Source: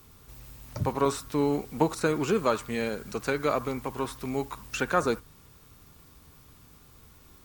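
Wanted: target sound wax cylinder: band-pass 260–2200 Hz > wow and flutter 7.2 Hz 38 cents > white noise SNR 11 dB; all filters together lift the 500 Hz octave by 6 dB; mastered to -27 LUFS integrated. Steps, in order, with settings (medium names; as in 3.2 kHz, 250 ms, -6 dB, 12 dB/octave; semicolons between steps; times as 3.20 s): band-pass 260–2200 Hz; peaking EQ 500 Hz +7.5 dB; wow and flutter 7.2 Hz 38 cents; white noise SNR 11 dB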